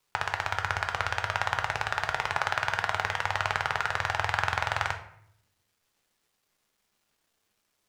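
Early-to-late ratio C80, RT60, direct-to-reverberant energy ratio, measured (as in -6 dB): 13.5 dB, 0.70 s, 4.5 dB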